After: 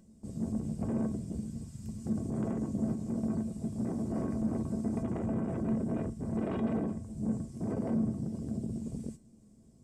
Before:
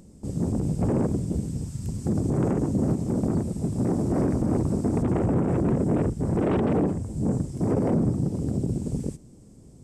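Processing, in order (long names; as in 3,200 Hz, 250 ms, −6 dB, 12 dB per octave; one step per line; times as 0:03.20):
tuned comb filter 220 Hz, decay 0.18 s, harmonics odd, mix 80%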